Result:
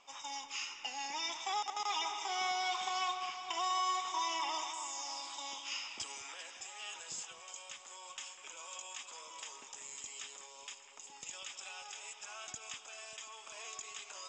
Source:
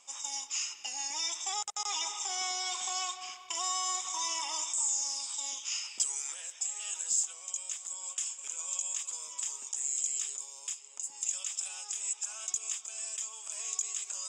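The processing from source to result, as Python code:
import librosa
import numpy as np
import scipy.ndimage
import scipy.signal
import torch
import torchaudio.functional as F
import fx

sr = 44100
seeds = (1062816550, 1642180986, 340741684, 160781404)

y = fx.air_absorb(x, sr, metres=220.0)
y = fx.echo_alternate(y, sr, ms=196, hz=2400.0, feedback_pct=75, wet_db=-9.5)
y = y * librosa.db_to_amplitude(4.0)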